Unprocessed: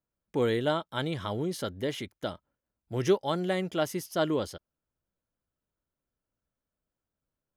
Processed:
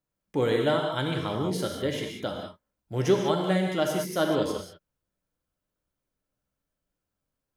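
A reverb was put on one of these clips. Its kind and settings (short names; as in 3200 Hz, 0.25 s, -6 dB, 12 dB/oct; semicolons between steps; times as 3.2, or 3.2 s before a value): non-linear reverb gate 0.22 s flat, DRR 1 dB; gain +1 dB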